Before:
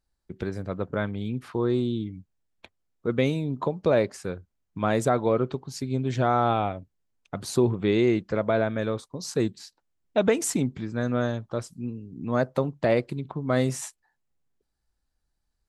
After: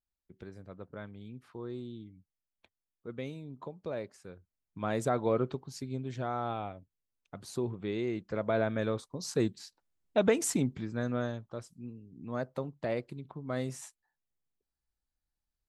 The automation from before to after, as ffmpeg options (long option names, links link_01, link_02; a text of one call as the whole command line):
ffmpeg -i in.wav -af "volume=3dB,afade=type=in:start_time=4.31:duration=1.09:silence=0.281838,afade=type=out:start_time=5.4:duration=0.74:silence=0.446684,afade=type=in:start_time=8.12:duration=0.61:silence=0.398107,afade=type=out:start_time=10.71:duration=0.84:silence=0.446684" out.wav